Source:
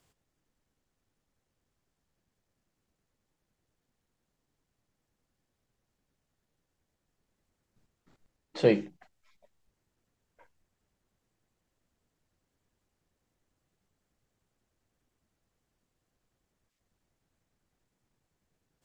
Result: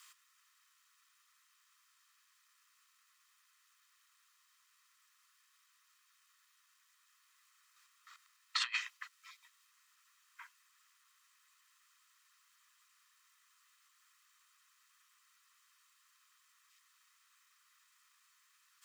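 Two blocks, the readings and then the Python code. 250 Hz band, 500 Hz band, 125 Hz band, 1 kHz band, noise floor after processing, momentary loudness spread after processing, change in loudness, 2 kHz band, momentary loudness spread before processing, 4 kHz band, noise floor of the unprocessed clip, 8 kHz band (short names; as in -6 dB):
under -40 dB, under -40 dB, under -40 dB, -1.5 dB, -73 dBFS, 24 LU, -13.5 dB, +2.0 dB, 13 LU, +6.0 dB, -83 dBFS, n/a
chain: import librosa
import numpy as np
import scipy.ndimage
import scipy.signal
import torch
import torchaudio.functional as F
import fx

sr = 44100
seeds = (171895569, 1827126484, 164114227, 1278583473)

y = scipy.signal.sosfilt(scipy.signal.butter(16, 1000.0, 'highpass', fs=sr, output='sos'), x)
y = y + 0.38 * np.pad(y, (int(1.6 * sr / 1000.0), 0))[:len(y)]
y = fx.over_compress(y, sr, threshold_db=-44.0, ratio=-0.5)
y = F.gain(torch.from_numpy(y), 8.5).numpy()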